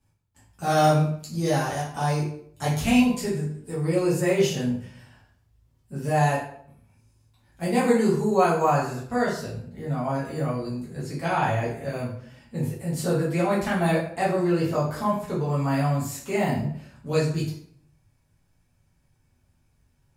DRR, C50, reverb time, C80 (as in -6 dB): -7.5 dB, 4.5 dB, 0.65 s, 9.0 dB